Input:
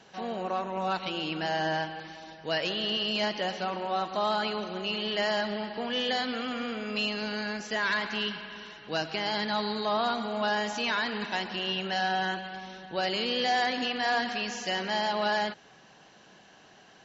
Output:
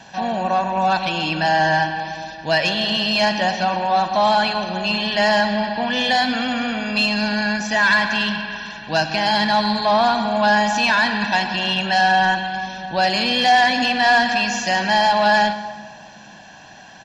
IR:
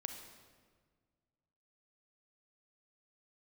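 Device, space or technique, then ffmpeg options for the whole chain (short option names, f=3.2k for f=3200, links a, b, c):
saturated reverb return: -filter_complex "[0:a]aecho=1:1:1.2:0.7,asplit=2[a][b];[1:a]atrim=start_sample=2205[c];[b][c]afir=irnorm=-1:irlink=0,asoftclip=type=tanh:threshold=-23.5dB,volume=3dB[d];[a][d]amix=inputs=2:normalize=0,volume=4.5dB"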